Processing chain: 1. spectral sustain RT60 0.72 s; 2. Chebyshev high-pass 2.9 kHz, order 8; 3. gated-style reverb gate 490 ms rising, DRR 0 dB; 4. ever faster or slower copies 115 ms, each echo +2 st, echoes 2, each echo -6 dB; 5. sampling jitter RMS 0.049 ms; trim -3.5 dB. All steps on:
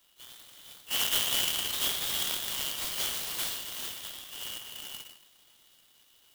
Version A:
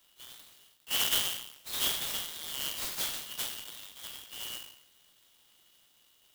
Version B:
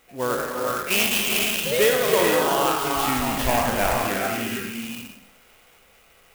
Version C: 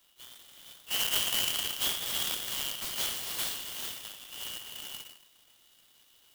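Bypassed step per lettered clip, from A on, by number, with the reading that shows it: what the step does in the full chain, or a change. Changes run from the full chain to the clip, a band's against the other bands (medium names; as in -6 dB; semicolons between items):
3, momentary loudness spread change -3 LU; 2, 4 kHz band -17.0 dB; 4, loudness change -1.0 LU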